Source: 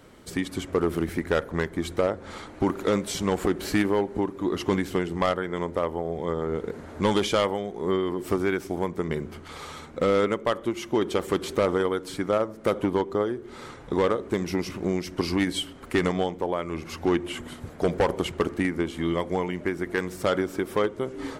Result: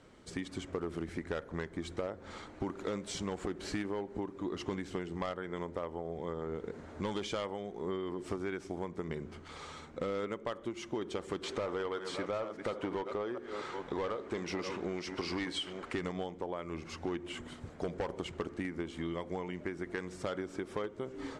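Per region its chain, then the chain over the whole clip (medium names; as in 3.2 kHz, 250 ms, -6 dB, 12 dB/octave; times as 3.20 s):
11.43–15.94 s: chunks repeated in reverse 488 ms, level -13 dB + overdrive pedal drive 14 dB, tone 3.5 kHz, clips at -13.5 dBFS
whole clip: low-pass 8.5 kHz 24 dB/octave; compression 3:1, threshold -27 dBFS; trim -7.5 dB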